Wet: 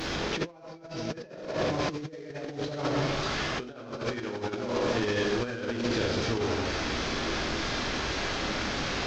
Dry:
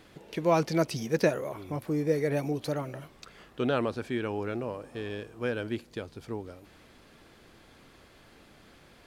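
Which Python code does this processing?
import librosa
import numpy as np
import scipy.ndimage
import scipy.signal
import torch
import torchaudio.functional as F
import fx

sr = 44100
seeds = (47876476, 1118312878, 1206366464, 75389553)

y = fx.delta_mod(x, sr, bps=32000, step_db=-35.0)
y = fx.rev_plate(y, sr, seeds[0], rt60_s=1.3, hf_ratio=0.8, predelay_ms=0, drr_db=-2.5)
y = fx.over_compress(y, sr, threshold_db=-32.0, ratio=-0.5)
y = y * 10.0 ** (1.5 / 20.0)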